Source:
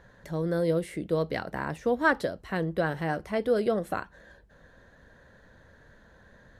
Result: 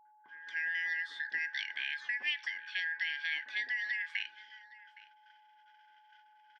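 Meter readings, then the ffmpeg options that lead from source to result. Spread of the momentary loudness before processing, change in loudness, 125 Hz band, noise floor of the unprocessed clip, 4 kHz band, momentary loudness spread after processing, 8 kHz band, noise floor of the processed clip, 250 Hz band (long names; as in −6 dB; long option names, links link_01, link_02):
9 LU, −6.0 dB, below −40 dB, −57 dBFS, +6.5 dB, 19 LU, can't be measured, −64 dBFS, below −40 dB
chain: -filter_complex "[0:a]afftfilt=real='real(if(lt(b,272),68*(eq(floor(b/68),0)*3+eq(floor(b/68),1)*0+eq(floor(b/68),2)*1+eq(floor(b/68),3)*2)+mod(b,68),b),0)':imag='imag(if(lt(b,272),68*(eq(floor(b/68),0)*3+eq(floor(b/68),1)*0+eq(floor(b/68),2)*1+eq(floor(b/68),3)*2)+mod(b,68),b),0)':win_size=2048:overlap=0.75,agate=range=-49dB:threshold=-53dB:ratio=16:detection=peak,acompressor=threshold=-26dB:ratio=10,highpass=frequency=240:width=0.5412,highpass=frequency=240:width=1.3066,equalizer=frequency=500:width_type=q:width=4:gain=-5,equalizer=frequency=850:width_type=q:width=4:gain=5,equalizer=frequency=1200:width_type=q:width=4:gain=6,equalizer=frequency=1900:width_type=q:width=4:gain=-5,equalizer=frequency=3100:width_type=q:width=4:gain=-3,lowpass=frequency=5000:width=0.5412,lowpass=frequency=5000:width=1.3066,acontrast=51,acrossover=split=1100[link_01][link_02];[link_02]adelay=230[link_03];[link_01][link_03]amix=inputs=2:normalize=0,aeval=exprs='val(0)+0.002*sin(2*PI*850*n/s)':channel_layout=same,asplit=2[link_04][link_05];[link_05]aecho=0:1:815:0.0944[link_06];[link_04][link_06]amix=inputs=2:normalize=0,volume=-7dB"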